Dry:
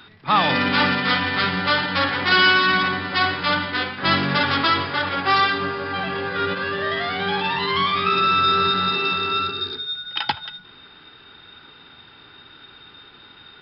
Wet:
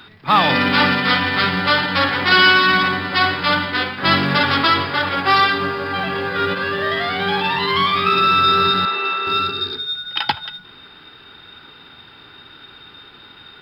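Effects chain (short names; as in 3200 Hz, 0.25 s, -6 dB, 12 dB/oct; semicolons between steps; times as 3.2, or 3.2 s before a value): companded quantiser 8-bit; 8.85–9.27 BPF 470–2800 Hz; gain +3.5 dB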